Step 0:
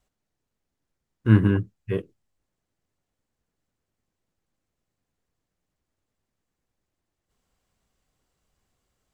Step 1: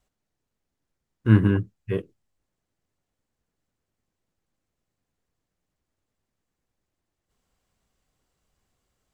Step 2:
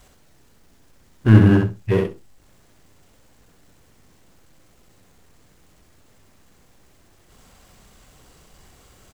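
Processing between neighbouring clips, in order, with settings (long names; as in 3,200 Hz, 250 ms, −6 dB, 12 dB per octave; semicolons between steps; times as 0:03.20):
no processing that can be heard
power curve on the samples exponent 0.7; repeating echo 64 ms, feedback 15%, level −4 dB; level +2 dB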